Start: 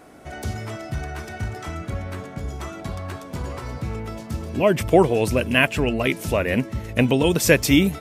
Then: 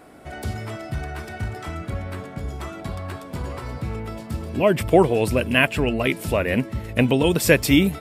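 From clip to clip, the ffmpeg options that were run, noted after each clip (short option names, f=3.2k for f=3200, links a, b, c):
-af "equalizer=f=6.2k:t=o:w=0.28:g=-7.5"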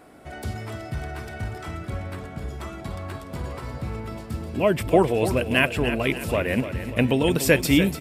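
-af "aecho=1:1:293|586|879|1172|1465:0.282|0.138|0.0677|0.0332|0.0162,volume=-2.5dB"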